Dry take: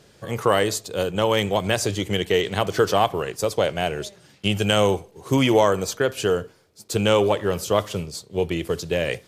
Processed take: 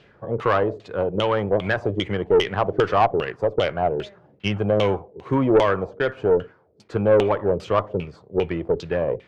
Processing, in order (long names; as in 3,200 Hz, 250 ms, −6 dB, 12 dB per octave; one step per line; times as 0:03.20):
auto-filter low-pass saw down 2.5 Hz 380–3,100 Hz
tube saturation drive 9 dB, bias 0.35